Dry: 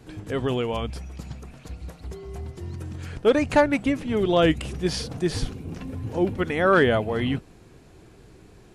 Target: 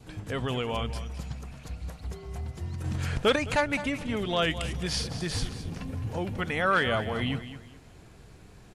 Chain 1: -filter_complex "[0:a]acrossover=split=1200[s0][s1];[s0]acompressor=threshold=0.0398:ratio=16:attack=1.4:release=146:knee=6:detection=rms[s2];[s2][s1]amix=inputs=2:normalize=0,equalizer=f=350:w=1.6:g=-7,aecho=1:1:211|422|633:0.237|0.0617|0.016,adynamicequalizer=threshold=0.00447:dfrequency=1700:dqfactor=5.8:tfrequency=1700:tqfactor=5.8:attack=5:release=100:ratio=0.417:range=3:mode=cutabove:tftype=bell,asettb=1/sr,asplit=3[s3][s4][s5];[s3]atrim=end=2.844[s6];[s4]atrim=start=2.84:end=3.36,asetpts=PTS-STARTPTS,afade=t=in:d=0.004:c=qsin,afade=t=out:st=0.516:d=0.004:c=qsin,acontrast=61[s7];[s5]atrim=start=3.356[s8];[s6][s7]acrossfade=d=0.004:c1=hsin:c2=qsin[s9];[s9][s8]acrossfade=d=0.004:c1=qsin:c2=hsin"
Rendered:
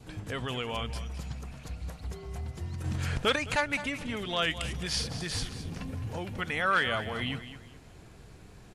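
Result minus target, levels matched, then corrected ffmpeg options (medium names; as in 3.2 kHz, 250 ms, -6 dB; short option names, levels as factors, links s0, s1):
compression: peak gain reduction +6.5 dB
-filter_complex "[0:a]acrossover=split=1200[s0][s1];[s0]acompressor=threshold=0.0891:ratio=16:attack=1.4:release=146:knee=6:detection=rms[s2];[s2][s1]amix=inputs=2:normalize=0,equalizer=f=350:w=1.6:g=-7,aecho=1:1:211|422|633:0.237|0.0617|0.016,adynamicequalizer=threshold=0.00447:dfrequency=1700:dqfactor=5.8:tfrequency=1700:tqfactor=5.8:attack=5:release=100:ratio=0.417:range=3:mode=cutabove:tftype=bell,asettb=1/sr,asplit=3[s3][s4][s5];[s3]atrim=end=2.844[s6];[s4]atrim=start=2.84:end=3.36,asetpts=PTS-STARTPTS,afade=t=in:d=0.004:c=qsin,afade=t=out:st=0.516:d=0.004:c=qsin,acontrast=61[s7];[s5]atrim=start=3.356[s8];[s6][s7]acrossfade=d=0.004:c1=hsin:c2=qsin[s9];[s9][s8]acrossfade=d=0.004:c1=qsin:c2=hsin"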